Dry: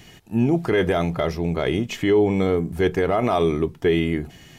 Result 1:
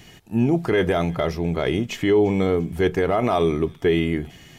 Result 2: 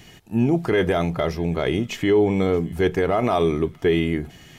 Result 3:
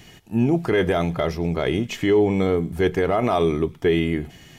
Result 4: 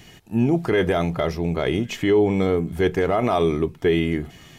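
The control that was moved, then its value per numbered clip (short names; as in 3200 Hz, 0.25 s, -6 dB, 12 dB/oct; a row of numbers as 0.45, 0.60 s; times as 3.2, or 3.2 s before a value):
thin delay, time: 0.345, 0.627, 0.105, 1.102 s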